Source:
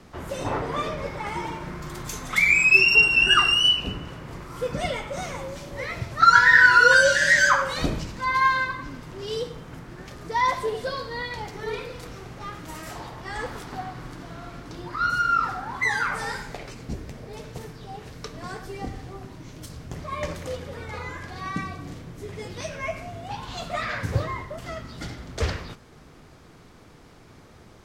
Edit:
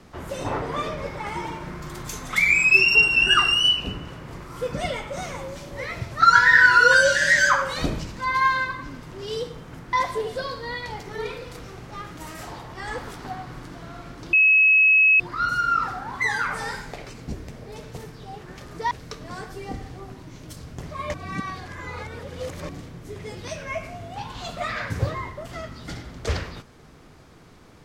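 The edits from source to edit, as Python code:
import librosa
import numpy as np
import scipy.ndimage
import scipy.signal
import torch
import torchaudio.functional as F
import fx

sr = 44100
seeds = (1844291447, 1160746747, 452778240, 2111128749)

y = fx.edit(x, sr, fx.move(start_s=9.93, length_s=0.48, to_s=18.04),
    fx.insert_tone(at_s=14.81, length_s=0.87, hz=2570.0, db=-12.5),
    fx.reverse_span(start_s=20.27, length_s=1.55), tone=tone)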